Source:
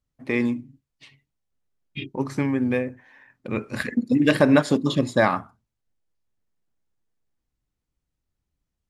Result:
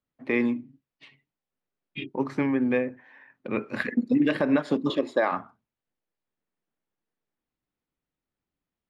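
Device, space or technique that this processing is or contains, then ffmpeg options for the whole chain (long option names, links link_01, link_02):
DJ mixer with the lows and highs turned down: -filter_complex "[0:a]acrossover=split=170 3800:gain=0.178 1 0.158[link_01][link_02][link_03];[link_01][link_02][link_03]amix=inputs=3:normalize=0,alimiter=limit=-13dB:level=0:latency=1:release=228,asettb=1/sr,asplit=3[link_04][link_05][link_06];[link_04]atrim=end=4.904[link_07];[link_05]atrim=start=4.9:end=5.32,asetpts=PTS-STARTPTS,afade=type=in:duration=0.004:curve=qsin,afade=type=out:start_time=0.416:duration=0.004:curve=qsin,lowshelf=frequency=240:width_type=q:width=1.5:gain=-13.5[link_08];[link_06]atrim=start=5.316[link_09];[link_07][link_08]acrossfade=duration=0.004:curve1=hsin:curve2=qsin[link_10];[link_10][link_09]acrossfade=duration=0.004:curve1=qsin:curve2=hsin"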